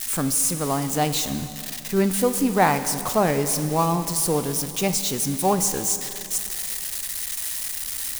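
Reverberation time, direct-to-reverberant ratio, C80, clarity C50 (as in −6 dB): 2.7 s, 9.0 dB, 11.0 dB, 10.0 dB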